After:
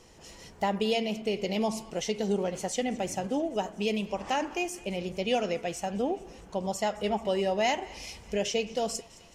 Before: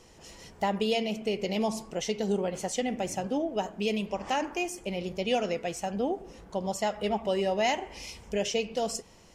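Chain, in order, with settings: thinning echo 216 ms, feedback 76%, high-pass 1.1 kHz, level -20.5 dB

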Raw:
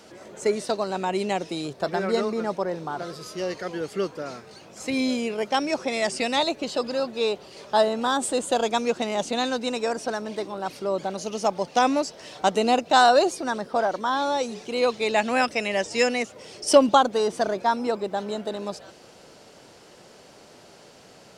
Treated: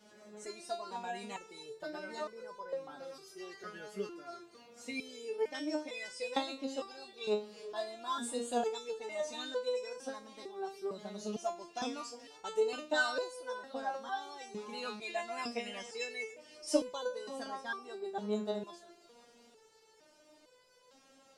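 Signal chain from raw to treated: repeats whose band climbs or falls 178 ms, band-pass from 150 Hz, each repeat 1.4 oct, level -11 dB; resonator arpeggio 2.2 Hz 210–500 Hz; trim +1 dB

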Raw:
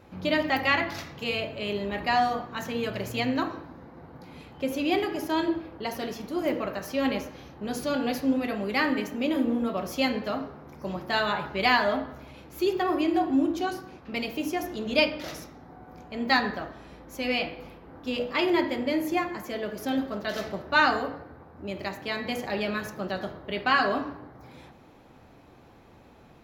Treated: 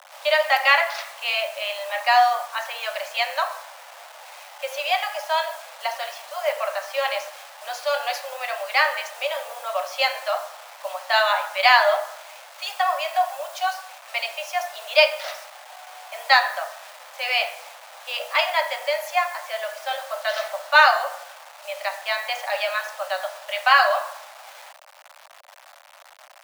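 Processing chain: level-controlled noise filter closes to 2 kHz, open at -21.5 dBFS; word length cut 8-bit, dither none; steep high-pass 560 Hz 96 dB/octave; trim +7.5 dB

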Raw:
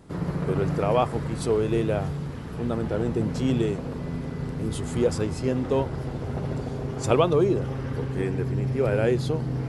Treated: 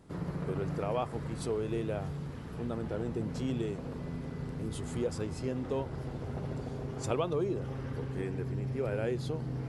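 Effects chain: compression 1.5:1, threshold -27 dBFS, peak gain reduction 4.5 dB; trim -7 dB

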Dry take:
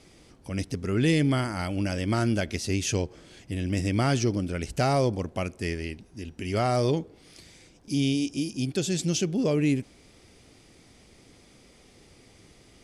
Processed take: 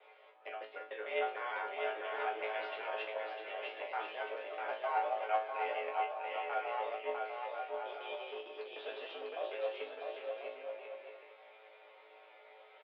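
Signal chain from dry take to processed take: time reversed locally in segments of 151 ms; reverse; compression 6:1, threshold -31 dBFS, peak gain reduction 11 dB; reverse; chord resonator A2 fifth, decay 0.37 s; in parallel at -11 dB: Schmitt trigger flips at -44 dBFS; on the sum: distance through air 400 m; bouncing-ball echo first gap 650 ms, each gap 0.6×, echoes 5; mistuned SSB +100 Hz 470–3500 Hz; trim +16.5 dB

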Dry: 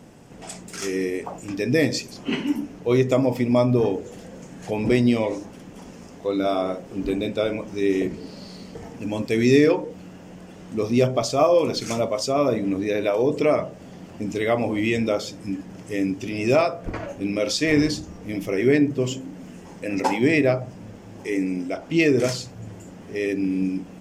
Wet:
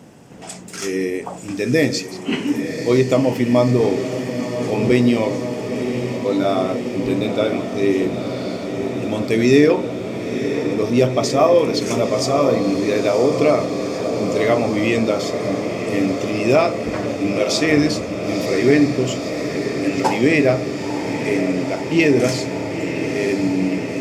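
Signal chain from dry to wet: high-pass 76 Hz; echo that smears into a reverb 991 ms, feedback 80%, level -8.5 dB; trim +3.5 dB

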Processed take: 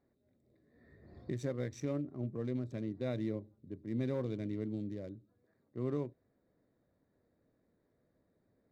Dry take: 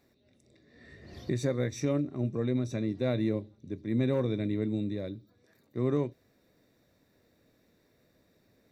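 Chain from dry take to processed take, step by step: local Wiener filter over 15 samples; trim -7.5 dB

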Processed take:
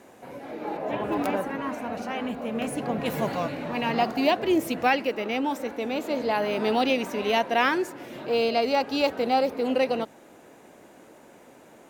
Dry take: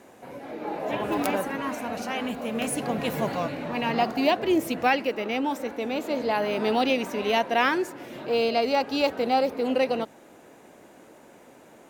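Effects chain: 0.77–3.06 s: treble shelf 3 kHz -9 dB

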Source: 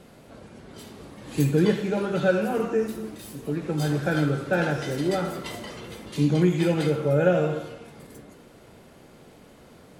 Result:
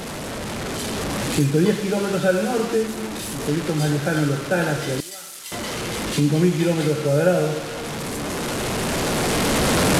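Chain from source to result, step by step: one-bit delta coder 64 kbps, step -28 dBFS; recorder AGC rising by 5.8 dB/s; 5.00–5.52 s: pre-emphasis filter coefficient 0.97; trim +2.5 dB

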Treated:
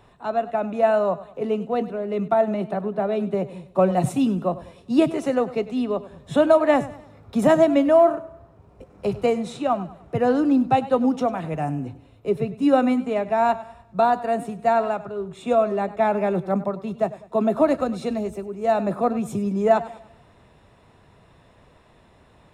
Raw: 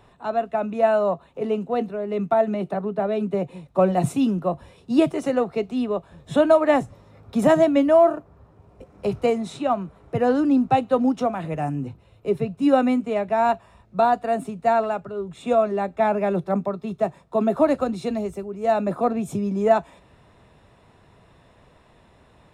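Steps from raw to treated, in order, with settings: short-mantissa float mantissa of 8-bit; modulated delay 99 ms, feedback 41%, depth 59 cents, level -16.5 dB

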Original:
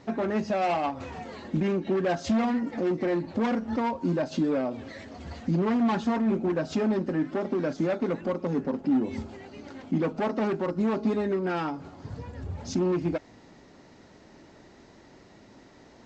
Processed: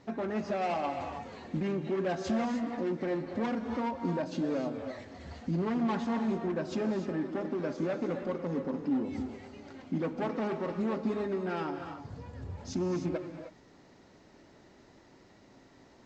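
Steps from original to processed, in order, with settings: gated-style reverb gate 330 ms rising, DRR 6 dB; trim -6 dB

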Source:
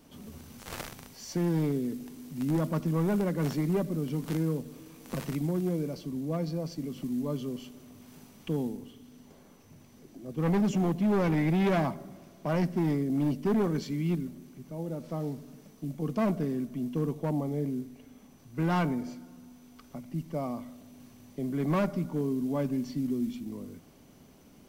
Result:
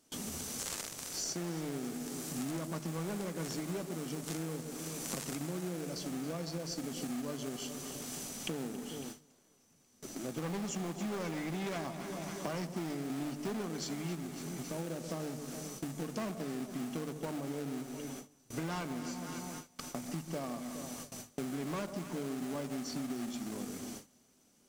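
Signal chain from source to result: peaking EQ 7.5 kHz +14.5 dB 1.6 oct; in parallel at -7 dB: sample-rate reducer 1 kHz, jitter 20%; on the sum: bass shelf 190 Hz -10.5 dB; on a send: echo whose repeats swap between lows and highs 138 ms, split 940 Hz, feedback 71%, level -12 dB; on the sum: gate with hold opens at -39 dBFS; compression 6:1, threshold -43 dBFS, peak gain reduction 18 dB; hum notches 50/100/150 Hz; trim +6.5 dB

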